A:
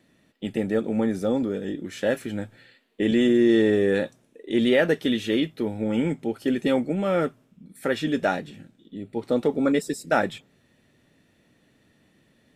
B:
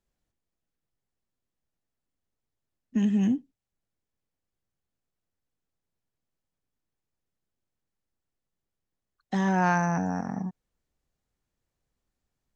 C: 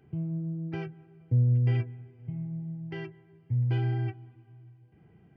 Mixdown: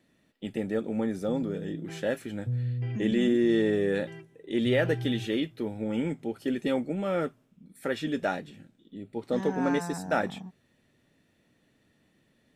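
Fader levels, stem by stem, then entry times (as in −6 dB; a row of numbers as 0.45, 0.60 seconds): −5.5, −10.0, −7.0 decibels; 0.00, 0.00, 1.15 seconds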